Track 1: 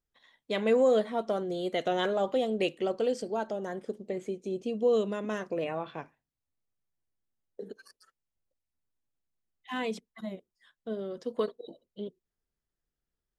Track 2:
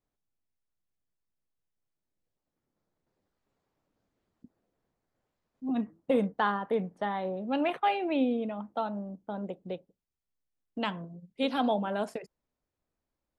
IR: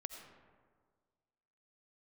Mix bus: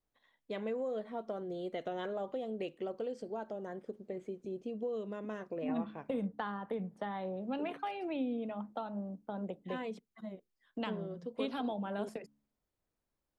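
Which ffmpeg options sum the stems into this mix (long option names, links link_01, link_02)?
-filter_complex "[0:a]highshelf=frequency=3100:gain=-11.5,acompressor=threshold=-29dB:ratio=4,volume=-6dB[link_01];[1:a]bandreject=frequency=71.08:width_type=h:width=4,bandreject=frequency=142.16:width_type=h:width=4,bandreject=frequency=213.24:width_type=h:width=4,bandreject=frequency=284.32:width_type=h:width=4,acrossover=split=190[link_02][link_03];[link_03]acompressor=threshold=-35dB:ratio=4[link_04];[link_02][link_04]amix=inputs=2:normalize=0,volume=-2dB[link_05];[link_01][link_05]amix=inputs=2:normalize=0"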